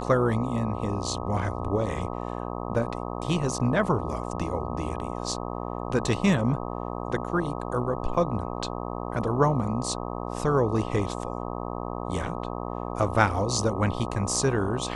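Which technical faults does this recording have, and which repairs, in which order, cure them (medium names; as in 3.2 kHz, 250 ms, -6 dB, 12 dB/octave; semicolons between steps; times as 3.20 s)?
buzz 60 Hz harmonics 21 -33 dBFS
8.14 s: dropout 2.6 ms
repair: de-hum 60 Hz, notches 21; interpolate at 8.14 s, 2.6 ms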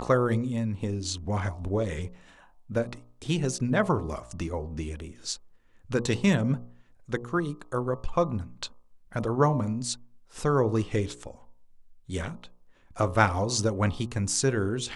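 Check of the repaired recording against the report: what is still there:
nothing left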